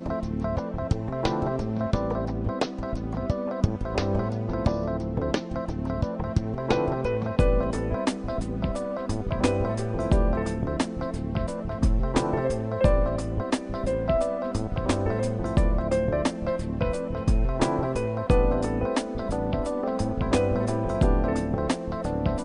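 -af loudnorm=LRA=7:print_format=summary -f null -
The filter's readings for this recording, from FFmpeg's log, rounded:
Input Integrated:    -27.0 LUFS
Input True Peak:      -8.0 dBTP
Input LRA:             2.3 LU
Input Threshold:     -37.0 LUFS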